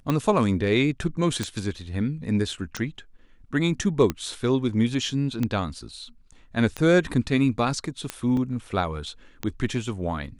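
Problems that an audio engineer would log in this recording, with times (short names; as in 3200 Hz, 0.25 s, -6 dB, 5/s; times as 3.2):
tick 45 rpm -12 dBFS
8.37 gap 2.2 ms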